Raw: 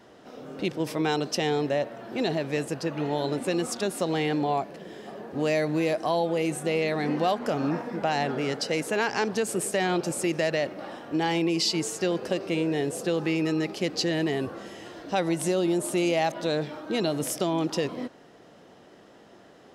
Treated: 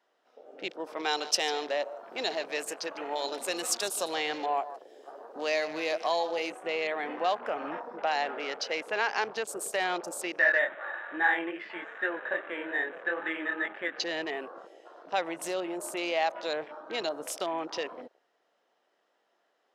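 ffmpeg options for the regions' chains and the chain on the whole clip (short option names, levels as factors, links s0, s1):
-filter_complex "[0:a]asettb=1/sr,asplit=3[s0][s1][s2];[s0]atrim=end=0.984[s3];[s1]atrim=start=0.98:end=6.52,asetpts=PTS-STARTPTS,afade=t=in:d=0.004:c=qsin,afade=t=out:st=5.536:d=0.004:c=qsin,bass=f=250:g=-1,treble=f=4000:g=10,aecho=1:1:150:0.2,atrim=end_sample=244314[s4];[s2]atrim=start=6.516[s5];[s3][s4]acrossfade=d=0.004:c1=hsin:c2=qsin[s6];[s6][s5]acrossfade=d=0.004:c1=qsin:c2=hsin,asettb=1/sr,asplit=3[s7][s8][s9];[s7]atrim=end=10.394[s10];[s8]atrim=start=10.39:end=14,asetpts=PTS-STARTPTS,afade=t=in:d=0.004:c=qsin,afade=t=out:st=3.606:d=0.004:c=qsin,aecho=1:1:3.4:0.31,atrim=end_sample=159201,flanger=delay=19:depth=5.2:speed=2.4,lowpass=f=1700:t=q:w=7.7[s11];[s9]atrim=start=13.996[s12];[s10][s11]acrossfade=d=0.004:c1=hsin:c2=qsin[s13];[s13][s12]acrossfade=d=0.004:c1=qsin:c2=hsin,highpass=650,afwtdn=0.00891,highshelf=f=5800:g=-6"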